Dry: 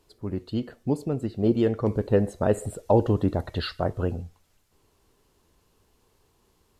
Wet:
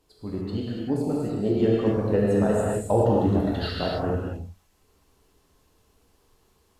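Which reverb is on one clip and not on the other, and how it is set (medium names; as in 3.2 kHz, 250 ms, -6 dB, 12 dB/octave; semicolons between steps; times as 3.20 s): gated-style reverb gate 310 ms flat, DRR -5 dB; trim -4 dB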